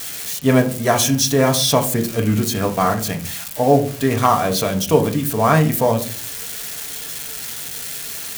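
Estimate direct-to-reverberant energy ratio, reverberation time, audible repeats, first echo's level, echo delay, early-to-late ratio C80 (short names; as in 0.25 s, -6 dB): 3.0 dB, 0.45 s, none, none, none, 18.5 dB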